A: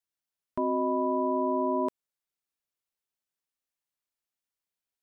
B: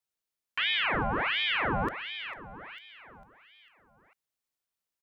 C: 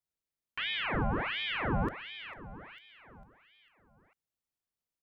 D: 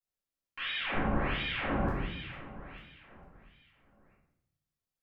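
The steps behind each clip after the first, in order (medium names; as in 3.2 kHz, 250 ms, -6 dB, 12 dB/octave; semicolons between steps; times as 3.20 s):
saturation -21.5 dBFS, distortion -19 dB; feedback delay 449 ms, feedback 48%, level -10 dB; ring modulator with a swept carrier 1.6 kHz, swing 75%, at 1.4 Hz; trim +3.5 dB
bass shelf 390 Hz +10 dB; trim -6.5 dB
simulated room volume 200 m³, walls mixed, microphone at 2.2 m; trim -8 dB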